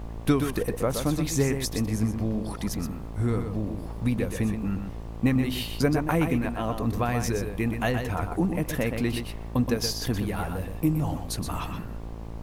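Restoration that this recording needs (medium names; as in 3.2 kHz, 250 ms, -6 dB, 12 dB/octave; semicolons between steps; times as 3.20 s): de-hum 56 Hz, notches 21; noise print and reduce 30 dB; inverse comb 123 ms -7 dB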